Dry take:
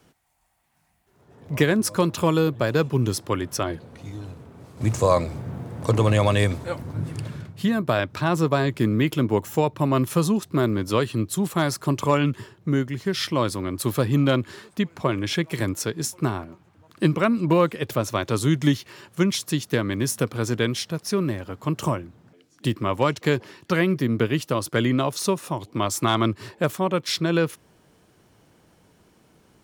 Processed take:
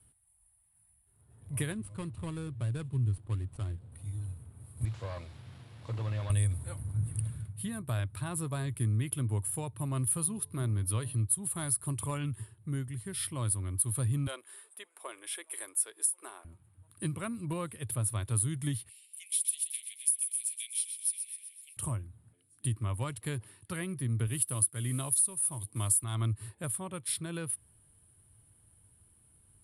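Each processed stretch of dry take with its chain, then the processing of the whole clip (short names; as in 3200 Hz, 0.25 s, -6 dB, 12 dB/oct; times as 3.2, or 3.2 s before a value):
1.72–3.92 median filter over 25 samples + LPF 8000 Hz 24 dB/oct + dynamic EQ 710 Hz, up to -5 dB, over -34 dBFS, Q 0.71
4.85–6.3 delta modulation 32 kbps, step -35.5 dBFS + HPF 450 Hz 6 dB/oct + requantised 12-bit, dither none
10.21–11.21 bell 7900 Hz -10.5 dB 0.23 oct + de-hum 144.9 Hz, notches 7 + mismatched tape noise reduction encoder only
14.27–16.45 inverse Chebyshev high-pass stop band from 160 Hz, stop band 50 dB + notch 4300 Hz
18.89–21.77 steep high-pass 2200 Hz 72 dB/oct + feedback echo 0.127 s, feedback 59%, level -9 dB
24.27–26.04 HPF 60 Hz + high shelf 6300 Hz +11 dB + modulation noise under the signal 24 dB
whole clip: EQ curve 110 Hz 0 dB, 160 Hz -14 dB, 480 Hz -21 dB, 1100 Hz -17 dB, 2400 Hz -16 dB, 3700 Hz -14 dB, 6300 Hz -22 dB, 10000 Hz +15 dB, 15000 Hz -29 dB; compressor, threshold -25 dBFS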